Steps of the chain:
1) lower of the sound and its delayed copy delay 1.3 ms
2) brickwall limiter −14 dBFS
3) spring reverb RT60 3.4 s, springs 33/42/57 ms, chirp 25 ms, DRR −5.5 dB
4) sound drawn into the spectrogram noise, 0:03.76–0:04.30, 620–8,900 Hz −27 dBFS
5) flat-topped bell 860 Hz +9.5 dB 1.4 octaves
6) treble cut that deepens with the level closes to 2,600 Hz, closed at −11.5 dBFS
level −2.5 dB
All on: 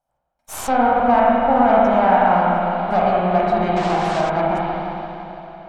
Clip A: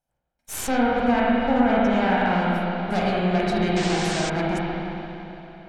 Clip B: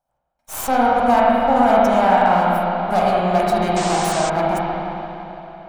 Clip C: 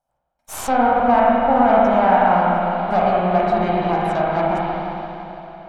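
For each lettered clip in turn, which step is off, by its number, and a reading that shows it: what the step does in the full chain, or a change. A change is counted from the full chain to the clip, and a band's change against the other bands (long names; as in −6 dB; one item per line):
5, change in integrated loudness −5.5 LU
6, 4 kHz band +4.5 dB
4, 4 kHz band −1.5 dB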